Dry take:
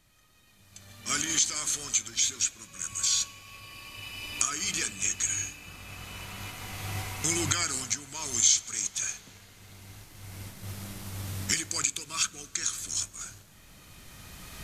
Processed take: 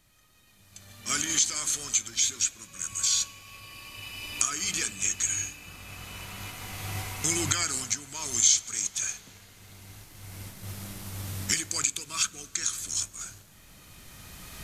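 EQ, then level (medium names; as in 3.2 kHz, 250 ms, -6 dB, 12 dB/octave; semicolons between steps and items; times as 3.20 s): treble shelf 8.8 kHz +3.5 dB; 0.0 dB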